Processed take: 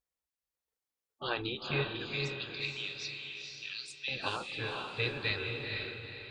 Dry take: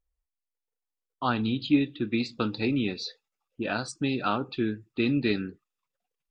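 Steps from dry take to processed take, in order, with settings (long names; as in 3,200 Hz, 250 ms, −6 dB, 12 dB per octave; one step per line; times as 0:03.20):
gate on every frequency bin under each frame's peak −10 dB weak
0:02.06–0:04.08: inverse Chebyshev high-pass filter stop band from 700 Hz, stop band 60 dB
feedback delay with all-pass diffusion 477 ms, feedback 41%, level −3 dB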